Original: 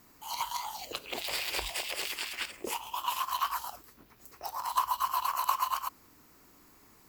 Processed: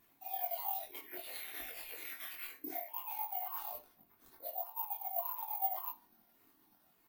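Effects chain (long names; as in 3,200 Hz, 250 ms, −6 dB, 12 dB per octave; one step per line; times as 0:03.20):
pitch shifter swept by a sawtooth −6.5 semitones, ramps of 577 ms
high-pass filter 150 Hz 6 dB per octave
parametric band 9,100 Hz −8.5 dB 0.51 octaves
reversed playback
downward compressor 10 to 1, threshold −41 dBFS, peak gain reduction 18 dB
reversed playback
soft clipping −37.5 dBFS, distortion −16 dB
double-tracking delay 22 ms −2.5 dB
bad sample-rate conversion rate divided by 3×, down none, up zero stuff
on a send at −6 dB: convolution reverb RT60 0.55 s, pre-delay 3 ms
on the sum: every bin expanded away from the loudest bin 1.5 to 1
level +1.5 dB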